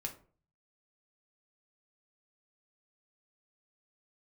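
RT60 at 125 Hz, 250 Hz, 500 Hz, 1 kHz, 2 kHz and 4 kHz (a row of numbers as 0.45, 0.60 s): 0.70, 0.50, 0.45, 0.40, 0.30, 0.25 s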